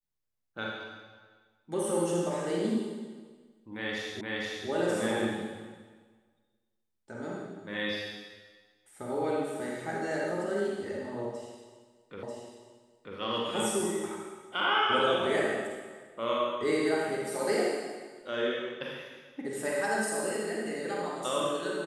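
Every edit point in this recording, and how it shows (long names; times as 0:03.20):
0:04.21: the same again, the last 0.47 s
0:12.23: the same again, the last 0.94 s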